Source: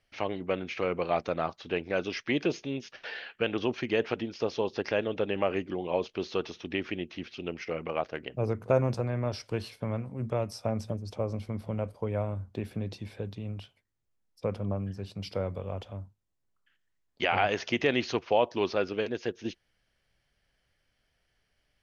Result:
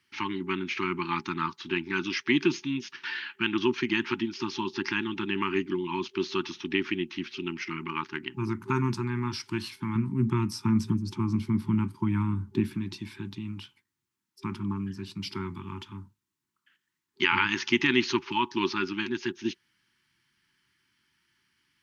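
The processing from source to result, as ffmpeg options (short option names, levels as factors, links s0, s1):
-filter_complex "[0:a]asettb=1/sr,asplit=3[s0][s1][s2];[s0]atrim=end=9.954[s3];[s1]atrim=start=9.95:end=12.75,asetpts=PTS-STARTPTS,afade=t=in:d=0.004:c=qsin,afade=t=out:st=2.796:d=0.004:c=qsin,equalizer=f=150:w=0.42:g=8[s4];[s2]atrim=start=12.746[s5];[s3][s4]acrossfade=d=0.004:c1=hsin:c2=qsin[s6];[s6][s5]acrossfade=d=0.004:c1=qsin:c2=hsin,highpass=160,afftfilt=real='re*(1-between(b*sr/4096,390,850))':imag='im*(1-between(b*sr/4096,390,850))':win_size=4096:overlap=0.75,volume=1.88"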